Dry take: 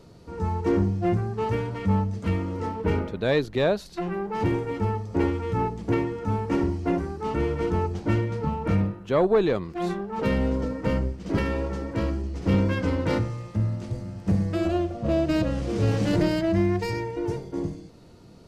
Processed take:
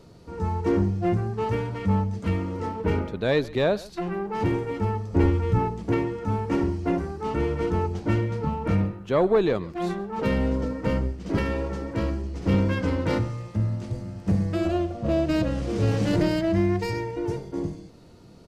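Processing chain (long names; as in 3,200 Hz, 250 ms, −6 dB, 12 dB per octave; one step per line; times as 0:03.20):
0:05.13–0:05.59: low-shelf EQ 130 Hz +11.5 dB
single-tap delay 135 ms −21 dB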